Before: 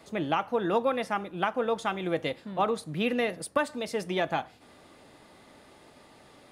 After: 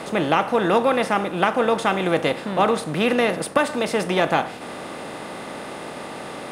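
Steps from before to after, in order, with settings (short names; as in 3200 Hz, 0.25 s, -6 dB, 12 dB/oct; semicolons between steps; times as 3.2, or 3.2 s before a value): per-bin compression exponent 0.6; gain +5.5 dB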